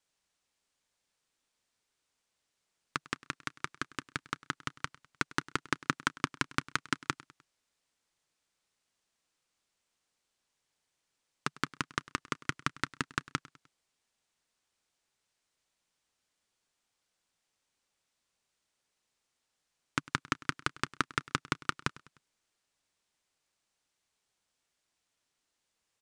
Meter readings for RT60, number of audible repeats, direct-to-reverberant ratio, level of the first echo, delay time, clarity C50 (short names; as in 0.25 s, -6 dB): none, 3, none, -21.0 dB, 0.101 s, none